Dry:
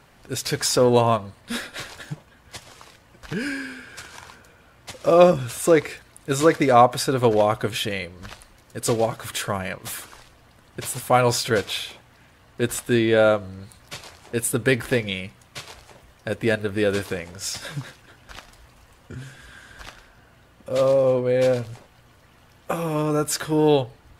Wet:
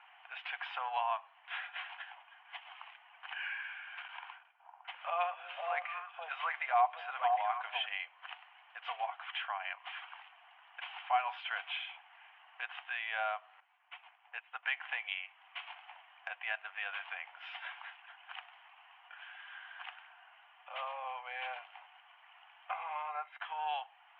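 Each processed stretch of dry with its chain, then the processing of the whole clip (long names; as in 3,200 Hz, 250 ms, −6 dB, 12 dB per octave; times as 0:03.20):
0:04.08–0:07.86: noise gate −50 dBFS, range −16 dB + echo through a band-pass that steps 253 ms, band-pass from 230 Hz, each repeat 1.4 octaves, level −0.5 dB
0:13.60–0:14.63: band-pass filter 270–3,200 Hz + expander for the loud parts, over −47 dBFS
0:22.71–0:23.42: RIAA equalisation playback + downward expander −25 dBFS + hollow resonant body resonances 2,100/3,800 Hz, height 15 dB, ringing for 35 ms
whole clip: Chebyshev band-pass filter 730–3,100 Hz, order 5; parametric band 1,400 Hz −7 dB 1.5 octaves; downward compressor 1.5 to 1, threshold −50 dBFS; level +3.5 dB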